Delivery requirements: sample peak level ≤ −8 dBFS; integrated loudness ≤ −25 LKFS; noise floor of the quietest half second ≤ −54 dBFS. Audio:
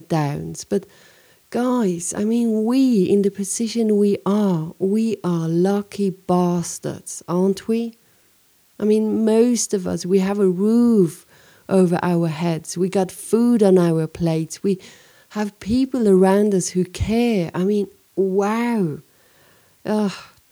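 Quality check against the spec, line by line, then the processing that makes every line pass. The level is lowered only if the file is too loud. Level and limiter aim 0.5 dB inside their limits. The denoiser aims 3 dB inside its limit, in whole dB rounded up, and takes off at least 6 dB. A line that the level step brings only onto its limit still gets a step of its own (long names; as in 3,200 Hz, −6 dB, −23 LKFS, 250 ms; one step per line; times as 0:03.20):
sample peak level −5.0 dBFS: out of spec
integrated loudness −19.5 LKFS: out of spec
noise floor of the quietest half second −58 dBFS: in spec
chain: level −6 dB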